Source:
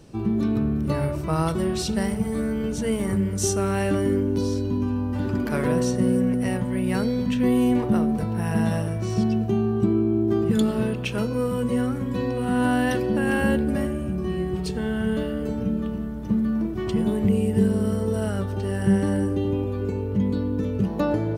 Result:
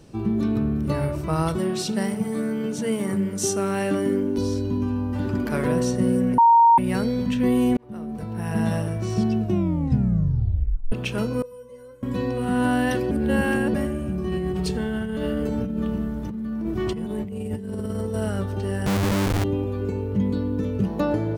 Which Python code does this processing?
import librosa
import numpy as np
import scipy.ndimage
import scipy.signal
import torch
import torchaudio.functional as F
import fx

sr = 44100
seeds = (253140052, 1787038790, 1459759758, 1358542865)

y = fx.highpass(x, sr, hz=130.0, slope=24, at=(1.59, 4.38))
y = fx.comb_fb(y, sr, f0_hz=510.0, decay_s=0.23, harmonics='all', damping=0.0, mix_pct=100, at=(11.42, 12.03))
y = fx.over_compress(y, sr, threshold_db=-27.0, ratio=-1.0, at=(14.28, 18.14))
y = fx.schmitt(y, sr, flips_db=-23.5, at=(18.86, 19.44))
y = fx.edit(y, sr, fx.bleep(start_s=6.38, length_s=0.4, hz=929.0, db=-10.5),
    fx.fade_in_span(start_s=7.77, length_s=0.93),
    fx.tape_stop(start_s=9.4, length_s=1.52),
    fx.reverse_span(start_s=13.11, length_s=0.63), tone=tone)